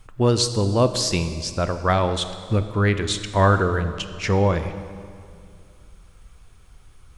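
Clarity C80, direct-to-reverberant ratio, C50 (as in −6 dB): 11.5 dB, 9.5 dB, 10.5 dB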